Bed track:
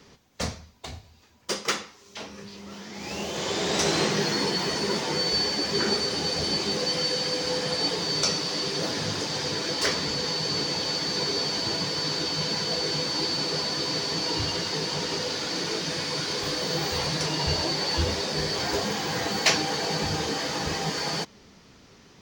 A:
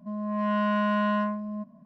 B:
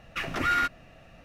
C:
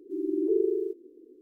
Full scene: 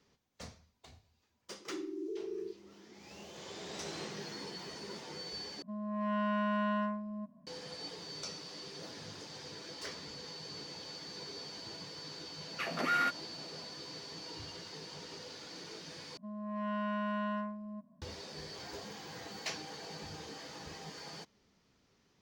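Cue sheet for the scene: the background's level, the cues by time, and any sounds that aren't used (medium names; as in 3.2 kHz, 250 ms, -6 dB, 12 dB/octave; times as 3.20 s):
bed track -18.5 dB
1.60 s: add C -7.5 dB + peak limiter -26.5 dBFS
5.62 s: replace with A -7.5 dB
12.43 s: add B -1 dB + rippled Chebyshev high-pass 160 Hz, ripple 6 dB
16.17 s: replace with A -10.5 dB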